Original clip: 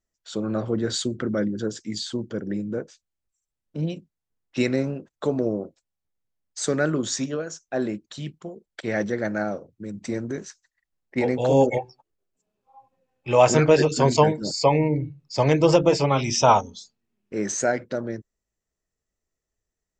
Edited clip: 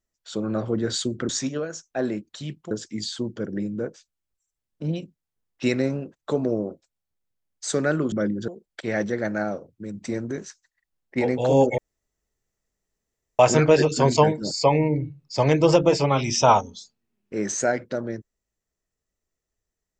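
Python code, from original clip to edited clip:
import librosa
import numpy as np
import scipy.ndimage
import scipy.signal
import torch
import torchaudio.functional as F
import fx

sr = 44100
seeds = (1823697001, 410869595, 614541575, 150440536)

y = fx.edit(x, sr, fx.swap(start_s=1.29, length_s=0.36, other_s=7.06, other_length_s=1.42),
    fx.room_tone_fill(start_s=11.78, length_s=1.61), tone=tone)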